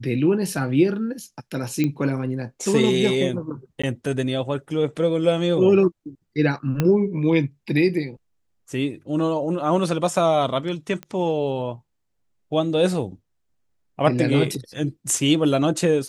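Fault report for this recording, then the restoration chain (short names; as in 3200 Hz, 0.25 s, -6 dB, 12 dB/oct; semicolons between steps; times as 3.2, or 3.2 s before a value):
1.84 pop -11 dBFS
3.82–3.83 gap 15 ms
6.8 pop -8 dBFS
11.03 pop -19 dBFS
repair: de-click; interpolate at 3.82, 15 ms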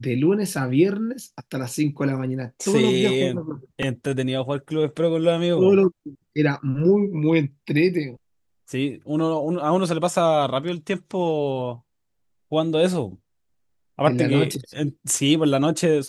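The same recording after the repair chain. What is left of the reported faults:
6.8 pop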